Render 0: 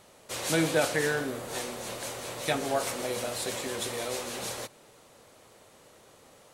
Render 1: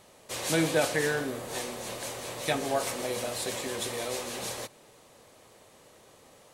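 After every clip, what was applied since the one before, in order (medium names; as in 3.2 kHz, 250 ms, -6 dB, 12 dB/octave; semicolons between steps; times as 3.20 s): band-stop 1.4 kHz, Q 14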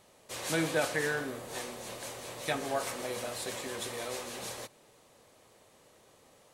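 dynamic bell 1.4 kHz, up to +4 dB, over -42 dBFS, Q 1.2; trim -5 dB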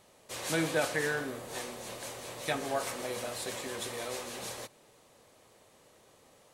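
no audible change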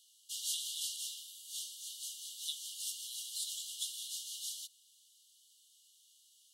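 brick-wall FIR high-pass 2.8 kHz; trim +1.5 dB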